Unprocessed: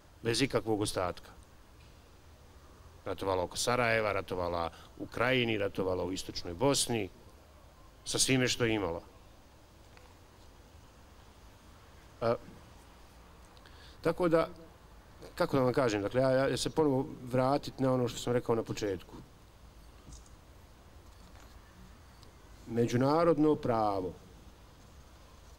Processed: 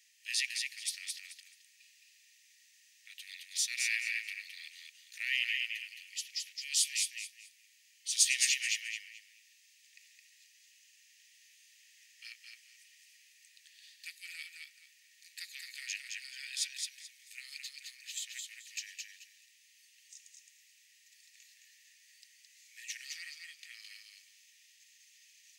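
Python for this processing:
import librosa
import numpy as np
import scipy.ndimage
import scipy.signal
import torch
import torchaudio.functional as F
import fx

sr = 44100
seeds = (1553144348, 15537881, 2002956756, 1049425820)

y = scipy.signal.sosfilt(scipy.signal.cheby1(6, 6, 1800.0, 'highpass', fs=sr, output='sos'), x)
y = fx.echo_feedback(y, sr, ms=216, feedback_pct=23, wet_db=-4.0)
y = y * 10.0 ** (4.5 / 20.0)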